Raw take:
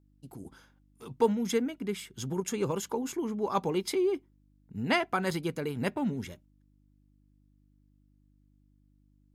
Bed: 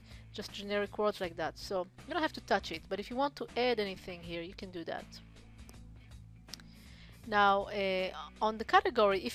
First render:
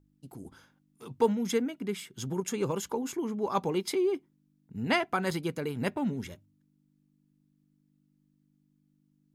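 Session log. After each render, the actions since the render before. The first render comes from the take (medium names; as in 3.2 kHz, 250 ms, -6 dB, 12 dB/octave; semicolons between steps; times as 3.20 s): de-hum 50 Hz, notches 2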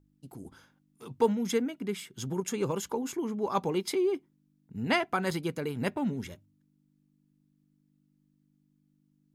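no audible change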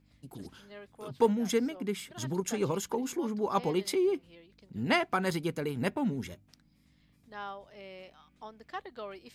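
add bed -14.5 dB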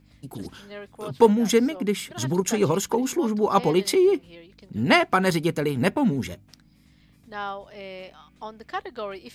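trim +9 dB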